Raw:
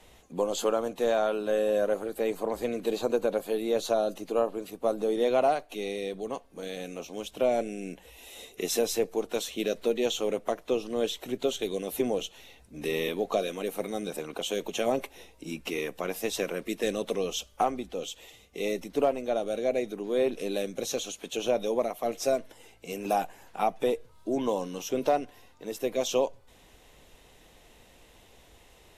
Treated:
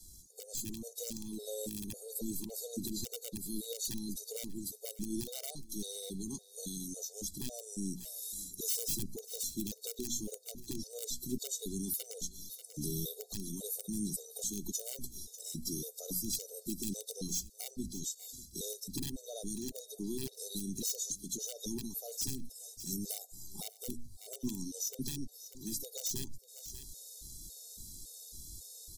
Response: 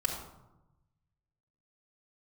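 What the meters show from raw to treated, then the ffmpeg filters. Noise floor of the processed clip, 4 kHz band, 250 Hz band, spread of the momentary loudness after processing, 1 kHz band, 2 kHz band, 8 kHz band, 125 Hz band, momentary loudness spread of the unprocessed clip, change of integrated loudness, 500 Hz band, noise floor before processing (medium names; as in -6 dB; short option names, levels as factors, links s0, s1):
-58 dBFS, -6.0 dB, -7.0 dB, 10 LU, -30.5 dB, -23.0 dB, +3.5 dB, +0.5 dB, 11 LU, -9.5 dB, -20.5 dB, -57 dBFS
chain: -filter_complex "[0:a]bandreject=f=60:t=h:w=6,bandreject=f=120:t=h:w=6,bandreject=f=180:t=h:w=6,bandreject=f=240:t=h:w=6,asplit=2[s0][s1];[s1]asoftclip=type=tanh:threshold=0.0473,volume=0.376[s2];[s0][s2]amix=inputs=2:normalize=0,asuperstop=centerf=2200:order=8:qfactor=0.7,equalizer=f=640:w=0.45:g=-11,aeval=exprs='(mod(18.8*val(0)+1,2)-1)/18.8':c=same,firequalizer=gain_entry='entry(170,0);entry(1200,-23);entry(2200,-6);entry(3500,8);entry(7900,11)':delay=0.05:min_phase=1,aecho=1:1:590:0.0708,acrossover=split=300[s3][s4];[s4]acompressor=threshold=0.00398:ratio=2[s5];[s3][s5]amix=inputs=2:normalize=0,alimiter=level_in=1.19:limit=0.0631:level=0:latency=1:release=81,volume=0.841,dynaudnorm=f=150:g=9:m=2.11,afftfilt=real='re*gt(sin(2*PI*1.8*pts/sr)*(1-2*mod(floor(b*sr/1024/390),2)),0)':imag='im*gt(sin(2*PI*1.8*pts/sr)*(1-2*mod(floor(b*sr/1024/390),2)),0)':win_size=1024:overlap=0.75"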